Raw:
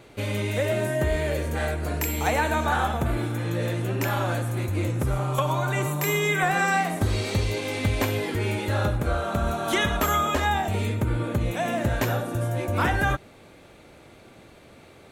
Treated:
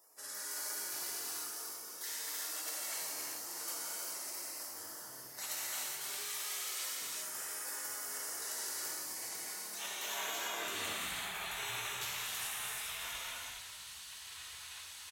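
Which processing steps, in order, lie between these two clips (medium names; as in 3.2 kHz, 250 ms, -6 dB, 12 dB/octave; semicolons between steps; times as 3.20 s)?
high-pass sweep 3.2 kHz -> 210 Hz, 9.46–11.34 s; dynamic bell 140 Hz, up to -4 dB, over -44 dBFS, Q 2; reverse; compression 16:1, threshold -34 dBFS, peak gain reduction 20.5 dB; reverse; spectral gate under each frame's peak -25 dB weak; on a send: frequency-shifting echo 304 ms, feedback 55%, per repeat +66 Hz, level -15.5 dB; on the sum: gated-style reverb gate 450 ms flat, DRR -6 dB; trim +7.5 dB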